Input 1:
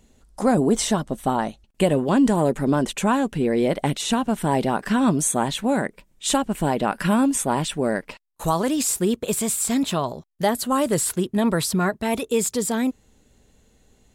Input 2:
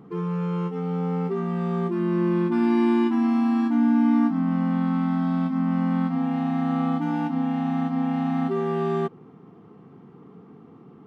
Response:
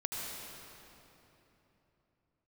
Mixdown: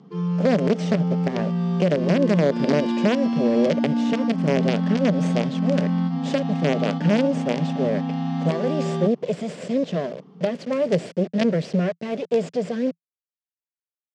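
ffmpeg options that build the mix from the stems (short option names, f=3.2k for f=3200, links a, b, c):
-filter_complex "[0:a]acrusher=bits=3:dc=4:mix=0:aa=0.000001,lowshelf=f=710:t=q:w=3:g=7,volume=-3dB[a];[1:a]aexciter=amount=4.4:drive=7.5:freq=3.3k,volume=-2dB[b];[a][b]amix=inputs=2:normalize=0,highpass=f=150:w=0.5412,highpass=f=150:w=1.3066,equalizer=f=170:t=q:w=4:g=8,equalizer=f=320:t=q:w=4:g=-7,equalizer=f=1.3k:t=q:w=4:g=-5,equalizer=f=3.9k:t=q:w=4:g=-6,lowpass=f=5.1k:w=0.5412,lowpass=f=5.1k:w=1.3066,alimiter=limit=-9.5dB:level=0:latency=1:release=104"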